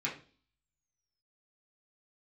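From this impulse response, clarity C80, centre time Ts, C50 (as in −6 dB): 15.0 dB, 21 ms, 9.5 dB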